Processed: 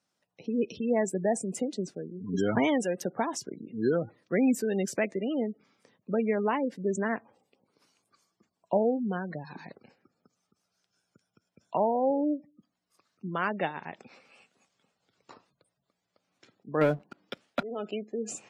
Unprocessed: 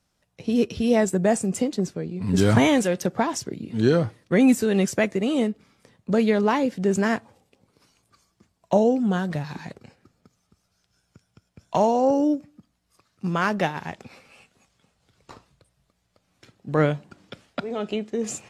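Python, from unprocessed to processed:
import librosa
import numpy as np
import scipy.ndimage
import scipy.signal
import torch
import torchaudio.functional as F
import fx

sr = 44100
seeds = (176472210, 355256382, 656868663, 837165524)

y = fx.spec_gate(x, sr, threshold_db=-25, keep='strong')
y = scipy.signal.sosfilt(scipy.signal.butter(2, 210.0, 'highpass', fs=sr, output='sos'), y)
y = fx.leveller(y, sr, passes=2, at=(16.81, 17.63))
y = y * 10.0 ** (-6.0 / 20.0)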